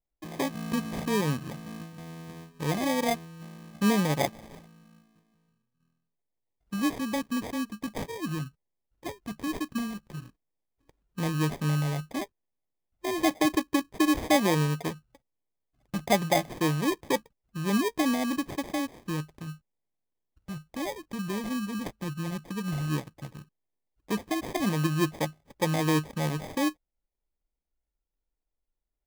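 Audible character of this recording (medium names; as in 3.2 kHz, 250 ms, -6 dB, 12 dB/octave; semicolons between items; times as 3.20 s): phasing stages 2, 0.084 Hz, lowest notch 580–3800 Hz; aliases and images of a low sample rate 1.4 kHz, jitter 0%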